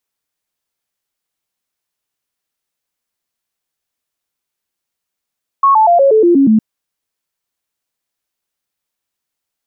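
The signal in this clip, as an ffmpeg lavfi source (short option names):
-f lavfi -i "aevalsrc='0.531*clip(min(mod(t,0.12),0.12-mod(t,0.12))/0.005,0,1)*sin(2*PI*1100*pow(2,-floor(t/0.12)/3)*mod(t,0.12))':d=0.96:s=44100"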